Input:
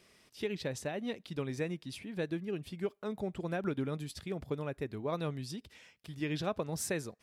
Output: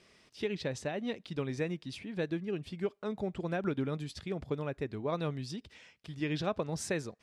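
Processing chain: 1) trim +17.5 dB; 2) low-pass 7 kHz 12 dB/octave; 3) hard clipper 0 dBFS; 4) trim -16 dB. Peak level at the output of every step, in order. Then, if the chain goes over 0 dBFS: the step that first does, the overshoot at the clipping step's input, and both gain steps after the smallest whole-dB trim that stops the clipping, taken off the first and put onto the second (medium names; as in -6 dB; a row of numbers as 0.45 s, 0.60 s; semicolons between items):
-3.5 dBFS, -3.5 dBFS, -3.5 dBFS, -19.5 dBFS; nothing clips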